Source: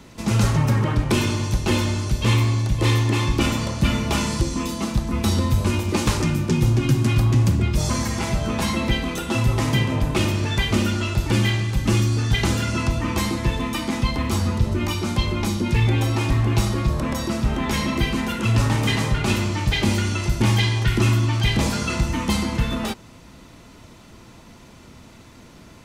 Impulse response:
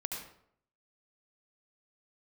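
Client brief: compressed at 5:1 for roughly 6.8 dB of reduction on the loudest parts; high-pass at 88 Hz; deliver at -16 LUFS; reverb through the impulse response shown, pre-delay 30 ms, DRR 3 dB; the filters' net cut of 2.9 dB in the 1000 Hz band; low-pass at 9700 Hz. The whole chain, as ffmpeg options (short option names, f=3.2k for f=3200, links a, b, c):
-filter_complex "[0:a]highpass=88,lowpass=9.7k,equalizer=f=1k:t=o:g=-3.5,acompressor=threshold=-23dB:ratio=5,asplit=2[a][b];[1:a]atrim=start_sample=2205,adelay=30[c];[b][c]afir=irnorm=-1:irlink=0,volume=-4.5dB[d];[a][d]amix=inputs=2:normalize=0,volume=9.5dB"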